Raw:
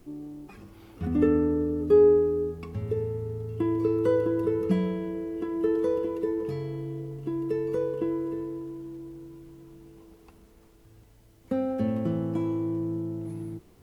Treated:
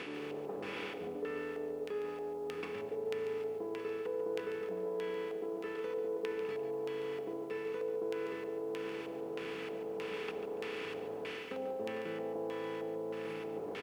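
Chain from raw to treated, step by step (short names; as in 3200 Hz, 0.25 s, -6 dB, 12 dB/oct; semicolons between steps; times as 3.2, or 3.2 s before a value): per-bin compression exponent 0.4; dynamic EQ 2900 Hz, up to -7 dB, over -46 dBFS, Q 0.89; on a send: feedback echo 0.15 s, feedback 31%, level -10.5 dB; on the sum: LFO low-pass square 1.6 Hz 700–2600 Hz; reverse; compressor 5:1, threshold -27 dBFS, peak gain reduction 14.5 dB; reverse; differentiator; lo-fi delay 0.143 s, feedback 35%, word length 12-bit, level -11 dB; gain +14 dB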